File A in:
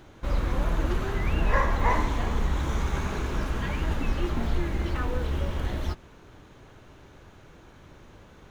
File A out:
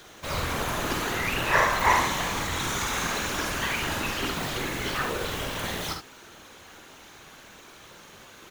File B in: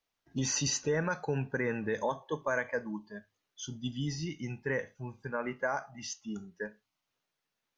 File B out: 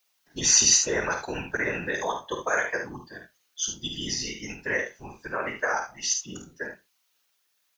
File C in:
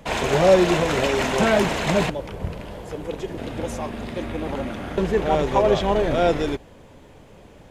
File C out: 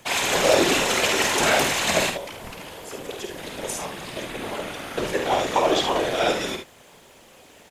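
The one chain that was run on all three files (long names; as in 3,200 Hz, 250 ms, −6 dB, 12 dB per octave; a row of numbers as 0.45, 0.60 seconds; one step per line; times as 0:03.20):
spectral tilt +3.5 dB per octave
random phases in short frames
on a send: ambience of single reflections 50 ms −7 dB, 73 ms −9 dB
on the sum: normalise the peak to −6 dBFS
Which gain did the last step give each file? +4.0, +4.5, −1.5 decibels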